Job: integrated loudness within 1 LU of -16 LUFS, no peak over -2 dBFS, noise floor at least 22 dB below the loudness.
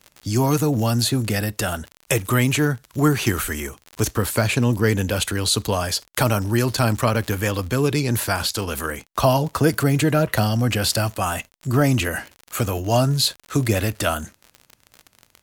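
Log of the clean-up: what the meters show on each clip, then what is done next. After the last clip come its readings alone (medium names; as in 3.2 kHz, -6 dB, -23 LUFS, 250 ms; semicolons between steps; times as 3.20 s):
tick rate 39 per s; loudness -21.5 LUFS; peak level -5.5 dBFS; loudness target -16.0 LUFS
-> de-click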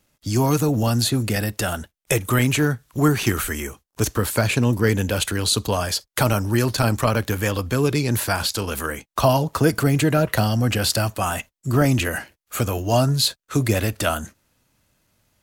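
tick rate 1.6 per s; loudness -21.5 LUFS; peak level -5.5 dBFS; loudness target -16.0 LUFS
-> trim +5.5 dB; peak limiter -2 dBFS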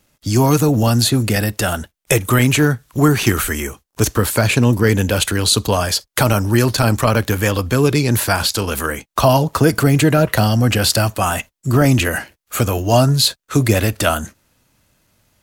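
loudness -16.0 LUFS; peak level -2.0 dBFS; noise floor -74 dBFS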